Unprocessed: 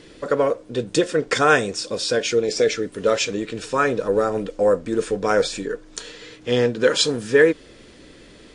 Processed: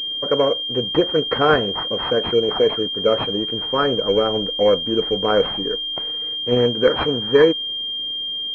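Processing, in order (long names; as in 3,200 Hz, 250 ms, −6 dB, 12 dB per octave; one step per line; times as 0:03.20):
mu-law and A-law mismatch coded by A
switching amplifier with a slow clock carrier 3,200 Hz
level +2 dB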